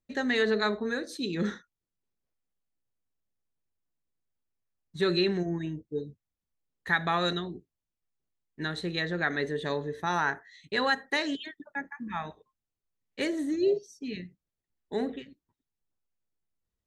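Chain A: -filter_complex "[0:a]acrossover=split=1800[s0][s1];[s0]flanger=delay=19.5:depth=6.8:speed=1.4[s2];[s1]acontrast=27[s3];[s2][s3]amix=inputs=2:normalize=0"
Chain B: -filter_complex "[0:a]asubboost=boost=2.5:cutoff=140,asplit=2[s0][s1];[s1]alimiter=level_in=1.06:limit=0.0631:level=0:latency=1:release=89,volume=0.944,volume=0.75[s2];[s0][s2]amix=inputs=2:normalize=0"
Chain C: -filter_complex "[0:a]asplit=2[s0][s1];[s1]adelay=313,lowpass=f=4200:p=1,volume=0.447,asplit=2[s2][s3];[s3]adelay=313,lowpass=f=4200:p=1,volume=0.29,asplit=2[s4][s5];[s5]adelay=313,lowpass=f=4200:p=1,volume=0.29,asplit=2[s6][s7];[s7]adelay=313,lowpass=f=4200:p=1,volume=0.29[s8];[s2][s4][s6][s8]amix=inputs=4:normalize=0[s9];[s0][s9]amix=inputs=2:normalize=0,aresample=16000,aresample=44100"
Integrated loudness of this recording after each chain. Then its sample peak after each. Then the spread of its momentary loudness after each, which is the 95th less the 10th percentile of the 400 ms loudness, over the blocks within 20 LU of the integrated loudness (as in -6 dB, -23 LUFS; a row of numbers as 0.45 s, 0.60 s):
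-30.5 LUFS, -28.0 LUFS, -30.0 LUFS; -11.0 dBFS, -12.0 dBFS, -13.0 dBFS; 16 LU, 13 LU, 17 LU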